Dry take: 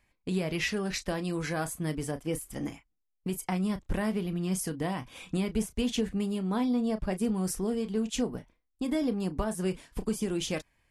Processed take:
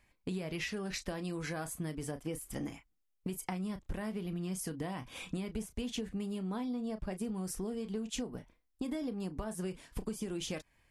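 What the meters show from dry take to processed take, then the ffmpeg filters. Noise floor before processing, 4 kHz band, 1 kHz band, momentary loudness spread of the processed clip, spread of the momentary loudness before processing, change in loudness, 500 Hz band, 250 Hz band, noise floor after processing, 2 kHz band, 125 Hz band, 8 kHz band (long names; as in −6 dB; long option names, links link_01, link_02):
−77 dBFS, −6.5 dB, −7.5 dB, 4 LU, 6 LU, −7.5 dB, −8.0 dB, −8.0 dB, −76 dBFS, −7.0 dB, −7.0 dB, −6.0 dB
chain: -af "acompressor=threshold=-36dB:ratio=6,volume=1dB"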